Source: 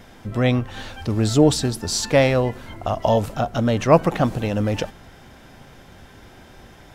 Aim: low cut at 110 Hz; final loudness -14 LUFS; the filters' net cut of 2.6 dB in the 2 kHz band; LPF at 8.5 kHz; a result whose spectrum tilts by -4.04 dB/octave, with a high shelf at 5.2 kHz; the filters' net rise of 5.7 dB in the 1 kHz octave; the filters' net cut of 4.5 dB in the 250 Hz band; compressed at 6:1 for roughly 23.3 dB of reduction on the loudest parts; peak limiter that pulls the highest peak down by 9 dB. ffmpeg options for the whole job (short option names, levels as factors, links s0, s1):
-af "highpass=110,lowpass=8500,equalizer=f=250:t=o:g=-6,equalizer=f=1000:t=o:g=9,equalizer=f=2000:t=o:g=-7,highshelf=f=5200:g=8,acompressor=threshold=0.0282:ratio=6,volume=15,alimiter=limit=0.841:level=0:latency=1"